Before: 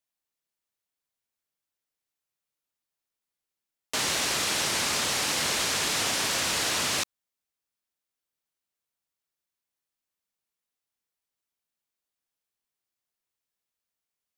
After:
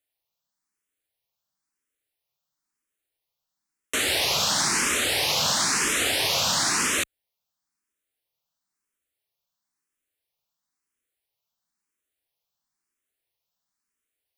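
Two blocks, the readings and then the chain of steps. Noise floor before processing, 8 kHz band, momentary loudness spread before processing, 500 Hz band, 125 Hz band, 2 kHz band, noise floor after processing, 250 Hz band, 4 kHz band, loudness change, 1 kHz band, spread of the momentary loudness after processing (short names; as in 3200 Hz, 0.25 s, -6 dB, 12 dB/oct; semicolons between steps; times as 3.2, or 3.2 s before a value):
under -85 dBFS, +3.5 dB, 3 LU, +3.5 dB, +3.0 dB, +3.5 dB, -85 dBFS, +3.5 dB, +3.5 dB, +3.5 dB, +3.5 dB, 4 LU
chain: endless phaser +0.99 Hz; gain +6.5 dB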